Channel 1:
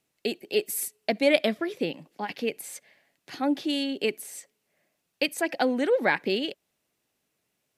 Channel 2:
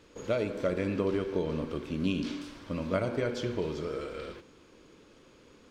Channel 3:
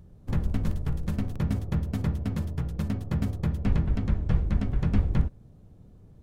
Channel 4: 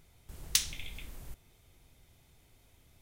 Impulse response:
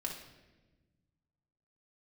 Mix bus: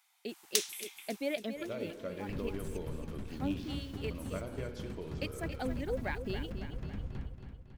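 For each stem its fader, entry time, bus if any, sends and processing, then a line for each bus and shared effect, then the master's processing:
−15.0 dB, 0.00 s, no send, echo send −10 dB, reverb reduction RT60 1.5 s; low-shelf EQ 240 Hz +9.5 dB; bit reduction 8 bits
−11.5 dB, 1.40 s, no send, no echo send, no processing
−13.0 dB, 2.00 s, no send, echo send −7.5 dB, dead-zone distortion −38 dBFS; brickwall limiter −18.5 dBFS, peak gain reduction 7.5 dB
−2.5 dB, 0.00 s, no send, echo send −18.5 dB, Butterworth high-pass 740 Hz 96 dB per octave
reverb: not used
echo: repeating echo 276 ms, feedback 54%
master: no processing

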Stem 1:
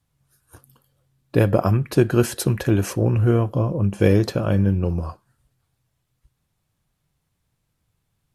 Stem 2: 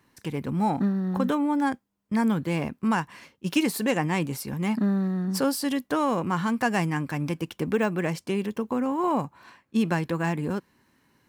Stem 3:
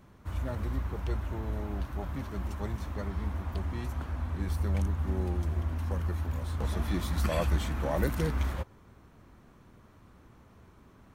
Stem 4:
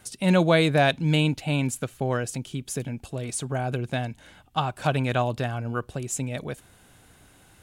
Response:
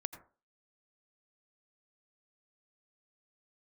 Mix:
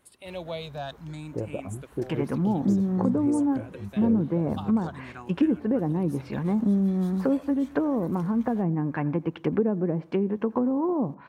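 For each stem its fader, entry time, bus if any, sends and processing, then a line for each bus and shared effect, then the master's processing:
−12.0 dB, 0.00 s, no send, reverb reduction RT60 1.5 s; Chebyshev low-pass filter 560 Hz, order 2
+2.5 dB, 1.85 s, send −9.5 dB, bass and treble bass −1 dB, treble −12 dB; treble cut that deepens with the level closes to 400 Hz, closed at −22.5 dBFS
−8.0 dB, 0.00 s, no send, downward compressor 10 to 1, threshold −33 dBFS, peak gain reduction 12 dB; bass and treble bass −6 dB, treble +2 dB
−12.5 dB, 0.00 s, no send, frequency shifter mixed with the dry sound +0.52 Hz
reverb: on, RT60 0.35 s, pre-delay 77 ms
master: low-shelf EQ 160 Hz −5.5 dB

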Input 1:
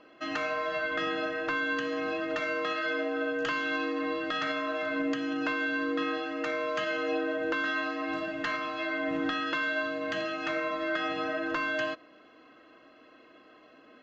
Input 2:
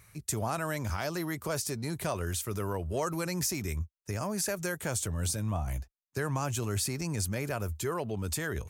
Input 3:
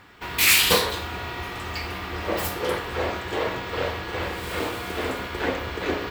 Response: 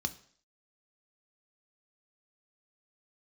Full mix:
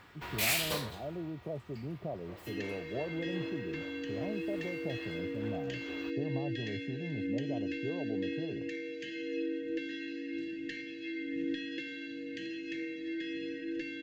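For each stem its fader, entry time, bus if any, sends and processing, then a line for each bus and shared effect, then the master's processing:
−7.0 dB, 2.25 s, no send, Chebyshev band-stop filter 510–1,700 Hz, order 5; parametric band 320 Hz +7 dB 0.41 octaves
−4.5 dB, 0.00 s, no send, elliptic band-pass filter 120–720 Hz
−5.5 dB, 0.00 s, no send, automatic ducking −20 dB, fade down 1.35 s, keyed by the second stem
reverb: not used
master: no processing

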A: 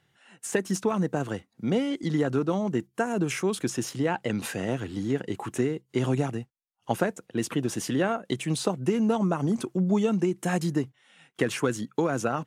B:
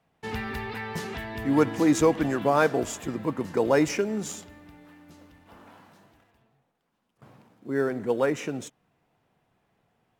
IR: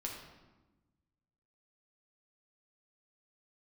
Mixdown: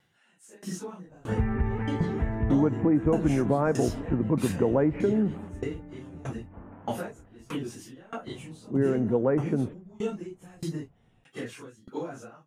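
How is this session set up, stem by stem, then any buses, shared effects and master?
+2.5 dB, 0.00 s, no send, random phases in long frames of 100 ms; downward compressor 2 to 1, threshold −31 dBFS, peak gain reduction 7.5 dB; tremolo with a ramp in dB decaying 1.6 Hz, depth 27 dB
−1.5 dB, 1.05 s, no send, inverse Chebyshev low-pass filter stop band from 5,800 Hz, stop band 50 dB; spectral tilt −4 dB per octave; downward compressor, threshold −18 dBFS, peak gain reduction 9 dB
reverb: not used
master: no processing

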